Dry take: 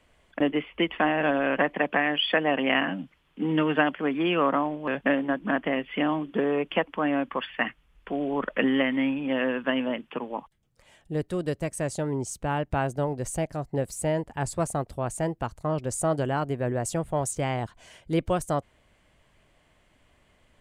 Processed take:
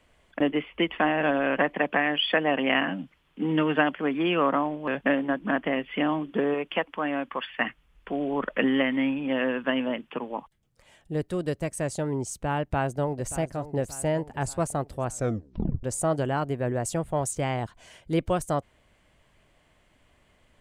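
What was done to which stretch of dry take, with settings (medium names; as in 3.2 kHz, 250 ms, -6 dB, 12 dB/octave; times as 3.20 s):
6.54–7.60 s: bass shelf 460 Hz -6 dB
12.60–13.30 s: echo throw 580 ms, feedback 55%, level -14 dB
15.09 s: tape stop 0.74 s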